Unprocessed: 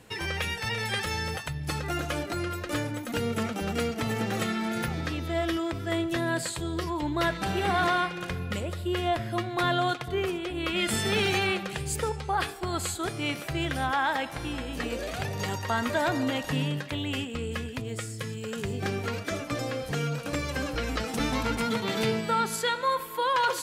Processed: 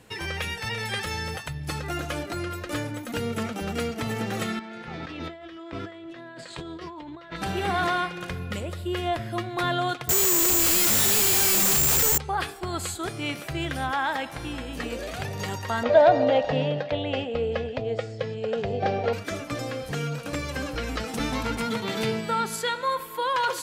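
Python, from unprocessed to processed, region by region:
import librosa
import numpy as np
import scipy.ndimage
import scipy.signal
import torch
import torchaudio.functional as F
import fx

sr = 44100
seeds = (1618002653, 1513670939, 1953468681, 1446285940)

y = fx.chain(x, sr, fx.peak_eq(hz=74.0, db=-12.0, octaves=2.2),
    fx.over_compress(threshold_db=-39.0, ratio=-1.0),
    fx.lowpass(hz=4000.0, slope=12), at=(4.59, 7.36))
y = fx.chain(y, sr, fx.clip_1bit(),
    fx.resample_bad(factor=6, down='none', up='zero_stuff'), at=(10.09, 12.18))
y = fx.chain(y, sr, fx.lowpass(hz=4900.0, slope=24),
    fx.band_shelf(hz=610.0, db=14.0, octaves=1.0), at=(15.83, 19.13))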